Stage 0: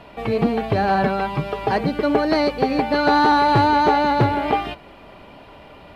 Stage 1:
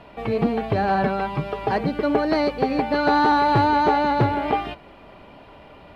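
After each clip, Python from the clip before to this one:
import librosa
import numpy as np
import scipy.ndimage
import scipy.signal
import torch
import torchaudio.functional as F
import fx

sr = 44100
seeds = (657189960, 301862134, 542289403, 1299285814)

y = fx.high_shelf(x, sr, hz=4200.0, db=-5.5)
y = F.gain(torch.from_numpy(y), -2.0).numpy()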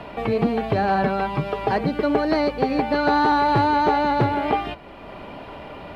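y = fx.band_squash(x, sr, depth_pct=40)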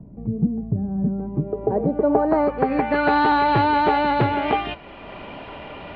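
y = fx.filter_sweep_lowpass(x, sr, from_hz=180.0, to_hz=3100.0, start_s=0.95, end_s=3.21, q=1.6)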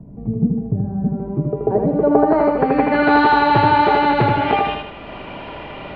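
y = fx.echo_feedback(x, sr, ms=79, feedback_pct=44, wet_db=-3.5)
y = F.gain(torch.from_numpy(y), 2.5).numpy()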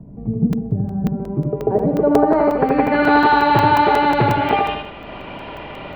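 y = fx.buffer_crackle(x, sr, first_s=0.53, period_s=0.18, block=128, kind='zero')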